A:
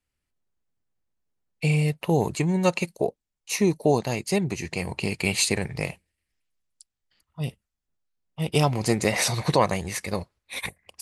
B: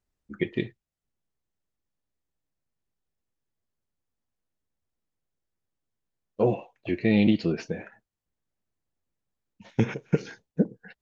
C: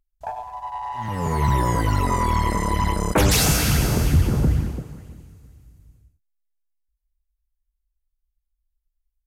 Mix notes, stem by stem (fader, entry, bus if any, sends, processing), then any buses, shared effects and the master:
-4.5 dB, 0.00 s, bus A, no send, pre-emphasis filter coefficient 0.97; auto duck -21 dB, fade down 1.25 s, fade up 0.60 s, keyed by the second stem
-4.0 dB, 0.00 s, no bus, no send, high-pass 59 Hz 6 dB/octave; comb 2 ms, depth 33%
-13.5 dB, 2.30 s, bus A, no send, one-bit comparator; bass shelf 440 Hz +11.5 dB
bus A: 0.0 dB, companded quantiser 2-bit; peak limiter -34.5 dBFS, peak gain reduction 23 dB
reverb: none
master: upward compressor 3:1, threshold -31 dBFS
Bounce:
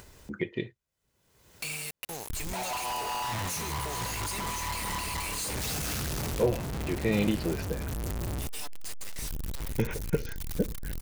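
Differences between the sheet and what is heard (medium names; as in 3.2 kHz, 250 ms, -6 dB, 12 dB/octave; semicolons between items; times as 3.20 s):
stem A -4.5 dB -> +2.0 dB; stem C: missing bass shelf 440 Hz +11.5 dB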